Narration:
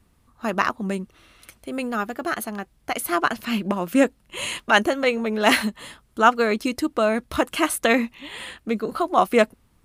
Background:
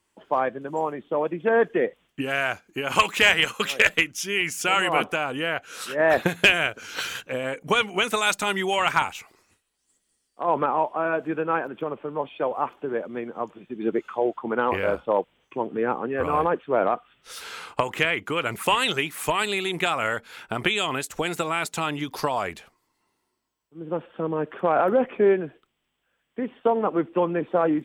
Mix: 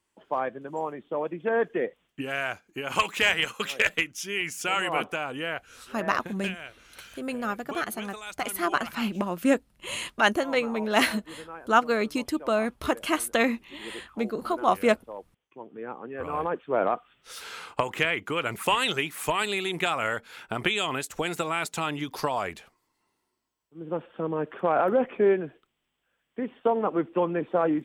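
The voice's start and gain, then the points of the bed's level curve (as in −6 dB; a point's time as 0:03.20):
5.50 s, −4.5 dB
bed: 0:05.54 −5 dB
0:05.99 −17.5 dB
0:15.41 −17.5 dB
0:16.82 −2.5 dB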